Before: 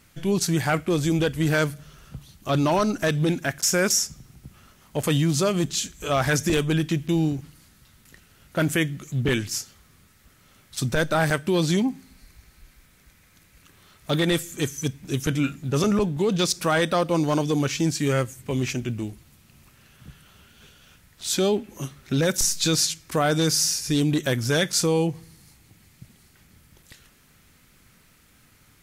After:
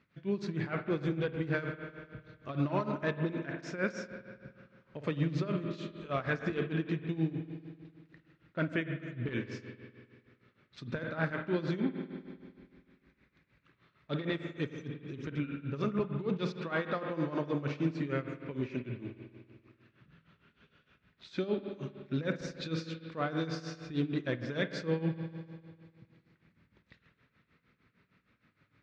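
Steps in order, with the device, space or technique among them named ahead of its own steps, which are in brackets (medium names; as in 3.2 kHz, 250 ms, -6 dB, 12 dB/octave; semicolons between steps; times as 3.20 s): combo amplifier with spring reverb and tremolo (spring tank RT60 2.1 s, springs 49 ms, chirp 45 ms, DRR 4.5 dB; tremolo 6.5 Hz, depth 80%; cabinet simulation 81–3500 Hz, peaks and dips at 83 Hz -8 dB, 780 Hz -7 dB, 3.1 kHz -7 dB); trim -8 dB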